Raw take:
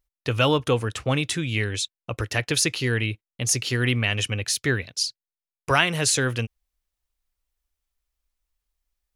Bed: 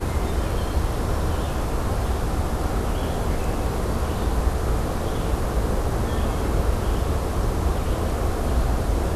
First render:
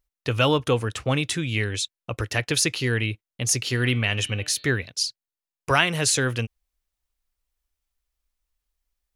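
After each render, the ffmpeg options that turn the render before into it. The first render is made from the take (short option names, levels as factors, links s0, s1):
-filter_complex "[0:a]asettb=1/sr,asplit=3[s0][s1][s2];[s0]atrim=end=3.634[s3];[s1]atrim=start=3.63:end=4.65,asetpts=PTS-STARTPTS,afade=t=in:d=0.004:c=qsin,afade=t=out:st=1.016:d=0.004:c=qsin,bandreject=f=149.5:t=h:w=4,bandreject=f=299:t=h:w=4,bandreject=f=448.5:t=h:w=4,bandreject=f=598:t=h:w=4,bandreject=f=747.5:t=h:w=4,bandreject=f=897:t=h:w=4,bandreject=f=1046.5:t=h:w=4,bandreject=f=1196:t=h:w=4,bandreject=f=1345.5:t=h:w=4,bandreject=f=1495:t=h:w=4,bandreject=f=1644.5:t=h:w=4,bandreject=f=1794:t=h:w=4,bandreject=f=1943.5:t=h:w=4,bandreject=f=2093:t=h:w=4,bandreject=f=2242.5:t=h:w=4,bandreject=f=2392:t=h:w=4,bandreject=f=2541.5:t=h:w=4,bandreject=f=2691:t=h:w=4,bandreject=f=2840.5:t=h:w=4,bandreject=f=2990:t=h:w=4,bandreject=f=3139.5:t=h:w=4,bandreject=f=3289:t=h:w=4,bandreject=f=3438.5:t=h:w=4,bandreject=f=3588:t=h:w=4,bandreject=f=3737.5:t=h:w=4,bandreject=f=3887:t=h:w=4,bandreject=f=4036.5:t=h:w=4,bandreject=f=4186:t=h:w=4,bandreject=f=4335.5:t=h:w=4,bandreject=f=4485:t=h:w=4[s4];[s2]atrim=start=4.646[s5];[s3][s4]acrossfade=d=0.004:c1=hsin:c2=qsin[s6];[s6][s5]acrossfade=d=0.004:c1=qsin:c2=hsin"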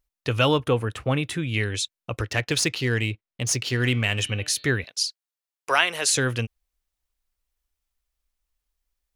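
-filter_complex "[0:a]asettb=1/sr,asplit=3[s0][s1][s2];[s0]atrim=end=0.604[s3];[s1]atrim=start=0.6:end=1.54,asetpts=PTS-STARTPTS,afade=t=in:d=0.004:c=qsin,afade=t=out:st=0.936:d=0.004:c=qsin,equalizer=f=5900:w=0.8:g=-10[s4];[s2]atrim=start=1.536[s5];[s3][s4]acrossfade=d=0.004:c1=hsin:c2=qsin[s6];[s6][s5]acrossfade=d=0.004:c1=qsin:c2=hsin,asettb=1/sr,asplit=3[s7][s8][s9];[s7]atrim=end=2.224[s10];[s8]atrim=start=2.22:end=4.22,asetpts=PTS-STARTPTS,afade=t=in:d=0.004:c=qsin,afade=t=out:st=1.996:d=0.004:c=qsin,adynamicsmooth=sensitivity=5:basefreq=4700[s11];[s9]atrim=start=4.216[s12];[s10][s11]acrossfade=d=0.004:c1=hsin:c2=qsin[s13];[s13][s12]acrossfade=d=0.004:c1=qsin:c2=hsin,asettb=1/sr,asplit=3[s14][s15][s16];[s14]atrim=end=4.844[s17];[s15]atrim=start=4.84:end=6.09,asetpts=PTS-STARTPTS,afade=t=in:d=0.004:c=qsin,afade=t=out:st=1.246:d=0.004:c=qsin,highpass=470[s18];[s16]atrim=start=6.086[s19];[s17][s18]acrossfade=d=0.004:c1=hsin:c2=qsin[s20];[s20][s19]acrossfade=d=0.004:c1=qsin:c2=hsin"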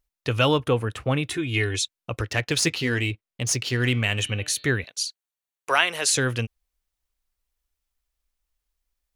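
-filter_complex "[0:a]asettb=1/sr,asplit=3[s0][s1][s2];[s0]atrim=end=1.304[s3];[s1]atrim=start=1.3:end=1.84,asetpts=PTS-STARTPTS,afade=t=in:d=0.004:c=qsin,afade=t=out:st=0.536:d=0.004:c=qsin,aecho=1:1:2.8:0.71,atrim=end_sample=23814[s4];[s2]atrim=start=1.836[s5];[s3][s4]acrossfade=d=0.004:c1=hsin:c2=qsin[s6];[s6][s5]acrossfade=d=0.004:c1=qsin:c2=hsin,asettb=1/sr,asplit=3[s7][s8][s9];[s7]atrim=end=2.614[s10];[s8]atrim=start=2.61:end=3.11,asetpts=PTS-STARTPTS,afade=t=in:d=0.004:c=qsin,afade=t=out:st=0.496:d=0.004:c=qsin,asplit=2[s11][s12];[s12]adelay=12,volume=0.501[s13];[s11][s13]amix=inputs=2:normalize=0,atrim=end_sample=22050[s14];[s9]atrim=start=3.106[s15];[s10][s14]acrossfade=d=0.004:c1=hsin:c2=qsin[s16];[s16][s15]acrossfade=d=0.004:c1=qsin:c2=hsin,asettb=1/sr,asplit=3[s17][s18][s19];[s17]atrim=end=4.004[s20];[s18]atrim=start=4:end=5.89,asetpts=PTS-STARTPTS,afade=t=in:d=0.004:c=qsin,afade=t=out:st=1.886:d=0.004:c=qsin,bandreject=f=5100:w=7.1[s21];[s19]atrim=start=5.886[s22];[s20][s21]acrossfade=d=0.004:c1=hsin:c2=qsin[s23];[s23][s22]acrossfade=d=0.004:c1=qsin:c2=hsin"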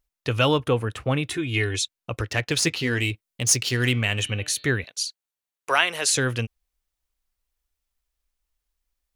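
-filter_complex "[0:a]asettb=1/sr,asplit=3[s0][s1][s2];[s0]atrim=end=2.994[s3];[s1]atrim=start=2.99:end=3.92,asetpts=PTS-STARTPTS,afade=t=in:d=0.004:c=qsin,afade=t=out:st=0.926:d=0.004:c=qsin,highshelf=f=4900:g=8.5[s4];[s2]atrim=start=3.916[s5];[s3][s4]acrossfade=d=0.004:c1=hsin:c2=qsin[s6];[s6][s5]acrossfade=d=0.004:c1=qsin:c2=hsin"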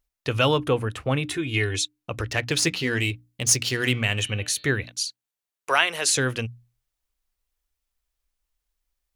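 -af "bandreject=f=60:t=h:w=6,bandreject=f=120:t=h:w=6,bandreject=f=180:t=h:w=6,bandreject=f=240:t=h:w=6,bandreject=f=300:t=h:w=6"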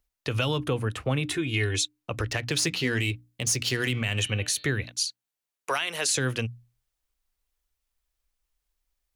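-filter_complex "[0:a]acrossover=split=240|3000[s0][s1][s2];[s1]acompressor=threshold=0.0562:ratio=6[s3];[s0][s3][s2]amix=inputs=3:normalize=0,alimiter=limit=0.178:level=0:latency=1:release=62"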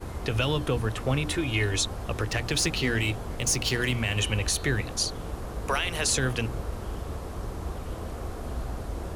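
-filter_complex "[1:a]volume=0.266[s0];[0:a][s0]amix=inputs=2:normalize=0"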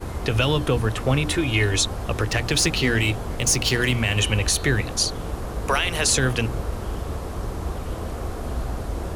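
-af "volume=1.88"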